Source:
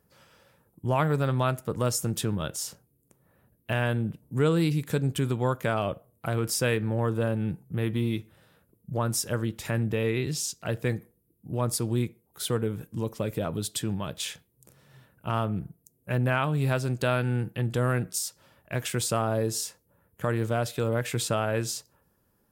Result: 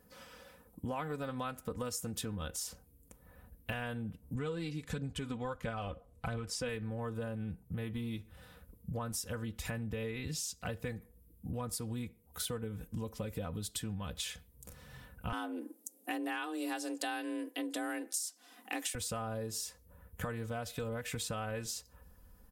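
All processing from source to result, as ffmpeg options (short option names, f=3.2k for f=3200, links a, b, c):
-filter_complex "[0:a]asettb=1/sr,asplit=3[a][b][c];[a]atrim=end=4.354[d];[b]atrim=start=4.35:end=6.69,asetpts=PTS-STARTPTS,afade=t=in:d=0.004:c=qsin,afade=t=out:st=2.336:d=0.004:c=qsin,lowpass=7.4k,aphaser=in_gain=1:out_gain=1:delay=4.2:decay=0.38:speed=1.5:type=triangular[e];[c]atrim=start=6.686[f];[d][e]acrossfade=d=0.004:c1=hsin:c2=qsin[g];[g][f]acrossfade=d=0.004:c1=qsin:c2=hsin,asettb=1/sr,asplit=3[h][i][j];[h]atrim=end=15.324[k];[i]atrim=start=15.32:end=18.95,asetpts=PTS-STARTPTS,afade=t=in:d=0.004:c=qsin,afade=t=out:st=3.626:d=0.004:c=qsin,lowpass=8.8k,aemphasis=mode=production:type=75kf,afreqshift=160[l];[j]atrim=start=18.946[m];[k][l]acrossfade=d=0.004:c1=hsin:c2=qsin[n];[n][m]acrossfade=d=0.004:c1=qsin:c2=hsin,aecho=1:1:4:0.72,asubboost=boost=6.5:cutoff=97,acompressor=threshold=-40dB:ratio=5,volume=2.5dB"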